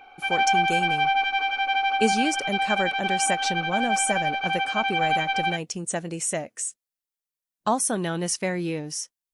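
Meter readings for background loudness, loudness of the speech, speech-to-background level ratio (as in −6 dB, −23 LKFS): −24.0 LKFS, −28.5 LKFS, −4.5 dB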